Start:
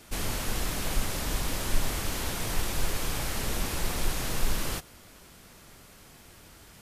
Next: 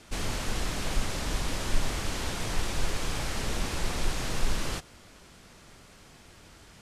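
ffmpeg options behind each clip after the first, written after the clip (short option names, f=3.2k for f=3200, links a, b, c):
-af "lowpass=8.1k"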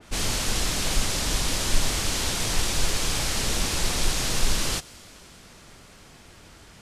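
-af "adynamicequalizer=threshold=0.00224:dfrequency=2800:dqfactor=0.7:tfrequency=2800:tqfactor=0.7:attack=5:release=100:ratio=0.375:range=4:mode=boostabove:tftype=highshelf,volume=3.5dB"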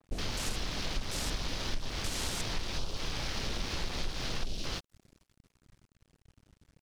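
-af "acompressor=threshold=-30dB:ratio=4,afwtdn=0.01,aeval=exprs='sgn(val(0))*max(abs(val(0))-0.00266,0)':c=same"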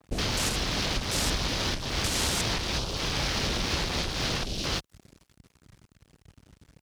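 -af "highpass=44,volume=8.5dB"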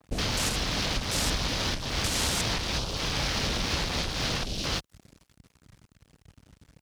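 -af "equalizer=f=370:w=5.1:g=-3.5"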